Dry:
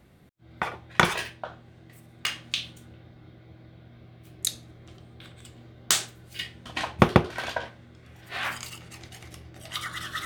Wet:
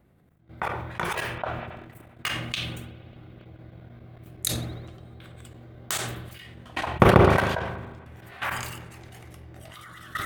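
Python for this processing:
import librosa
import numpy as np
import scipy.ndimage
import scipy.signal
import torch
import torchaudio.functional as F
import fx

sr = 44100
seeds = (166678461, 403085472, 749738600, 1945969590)

y = fx.peak_eq(x, sr, hz=4900.0, db=-10.0, octaves=2.1)
y = fx.level_steps(y, sr, step_db=17)
y = fx.rev_spring(y, sr, rt60_s=2.6, pass_ms=(38,), chirp_ms=50, drr_db=16.5)
y = fx.dynamic_eq(y, sr, hz=230.0, q=1.2, threshold_db=-55.0, ratio=4.0, max_db=-4)
y = fx.sustainer(y, sr, db_per_s=40.0)
y = y * librosa.db_to_amplitude(6.0)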